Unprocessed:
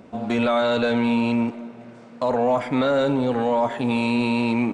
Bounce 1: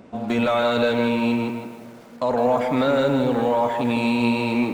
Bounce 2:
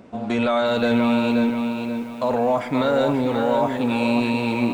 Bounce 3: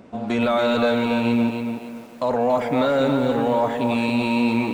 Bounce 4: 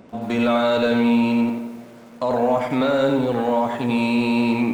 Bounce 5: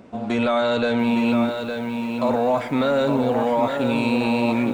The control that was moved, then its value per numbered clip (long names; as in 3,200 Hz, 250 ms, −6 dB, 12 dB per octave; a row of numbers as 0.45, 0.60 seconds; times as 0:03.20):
feedback echo at a low word length, delay time: 159, 532, 282, 89, 860 milliseconds